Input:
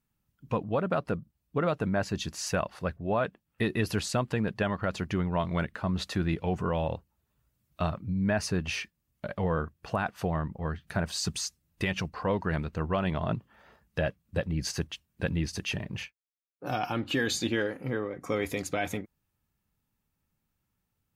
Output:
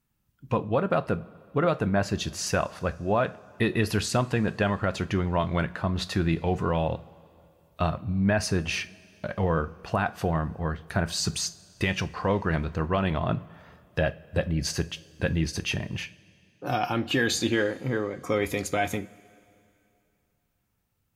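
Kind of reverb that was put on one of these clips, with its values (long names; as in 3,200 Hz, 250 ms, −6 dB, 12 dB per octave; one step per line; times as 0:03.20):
coupled-rooms reverb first 0.27 s, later 2.7 s, from −20 dB, DRR 11 dB
level +3.5 dB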